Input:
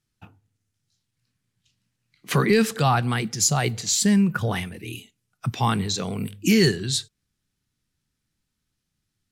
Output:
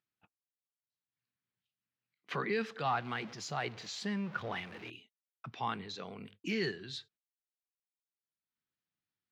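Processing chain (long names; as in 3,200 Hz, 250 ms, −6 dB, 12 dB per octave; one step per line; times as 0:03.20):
0:02.85–0:04.90: converter with a step at zero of −29.5 dBFS
high-pass filter 640 Hz 6 dB per octave
noise gate −46 dBFS, range −52 dB
upward compression, threshold −43 dBFS
high-frequency loss of the air 250 metres
level −8.5 dB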